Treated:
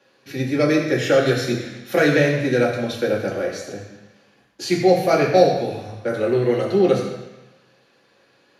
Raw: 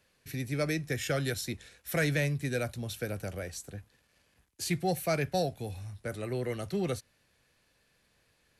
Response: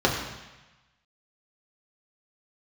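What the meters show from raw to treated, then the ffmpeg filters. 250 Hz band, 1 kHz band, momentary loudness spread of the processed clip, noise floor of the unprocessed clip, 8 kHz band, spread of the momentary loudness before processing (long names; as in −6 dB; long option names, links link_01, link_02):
+14.0 dB, +14.5 dB, 13 LU, −71 dBFS, +4.0 dB, 11 LU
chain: -filter_complex "[0:a]highpass=270[link_01];[1:a]atrim=start_sample=2205[link_02];[link_01][link_02]afir=irnorm=-1:irlink=0,volume=-3dB"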